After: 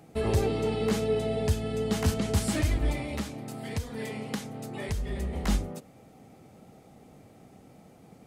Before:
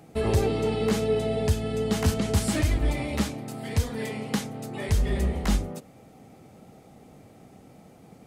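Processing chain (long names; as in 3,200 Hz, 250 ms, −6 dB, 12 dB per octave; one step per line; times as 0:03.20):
0:02.96–0:05.33: downward compressor 2.5 to 1, threshold −28 dBFS, peak gain reduction 7.5 dB
level −2.5 dB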